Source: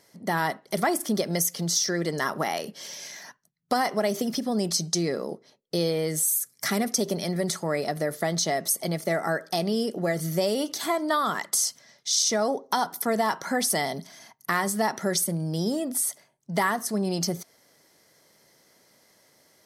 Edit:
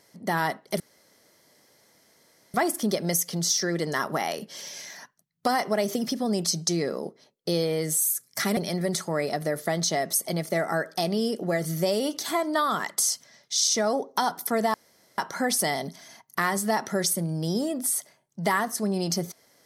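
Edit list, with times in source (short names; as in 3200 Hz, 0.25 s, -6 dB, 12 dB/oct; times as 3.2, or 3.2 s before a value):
0.8 insert room tone 1.74 s
6.83–7.12 cut
13.29 insert room tone 0.44 s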